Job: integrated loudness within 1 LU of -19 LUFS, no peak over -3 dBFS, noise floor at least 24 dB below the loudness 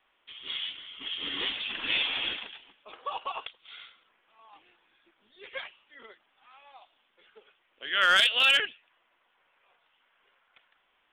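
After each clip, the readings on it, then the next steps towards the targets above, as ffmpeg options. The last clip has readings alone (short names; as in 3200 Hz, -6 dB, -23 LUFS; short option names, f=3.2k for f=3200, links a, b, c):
loudness -27.0 LUFS; peak -13.5 dBFS; loudness target -19.0 LUFS
-> -af "volume=8dB"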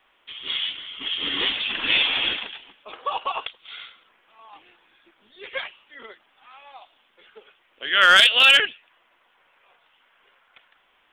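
loudness -19.0 LUFS; peak -5.5 dBFS; noise floor -64 dBFS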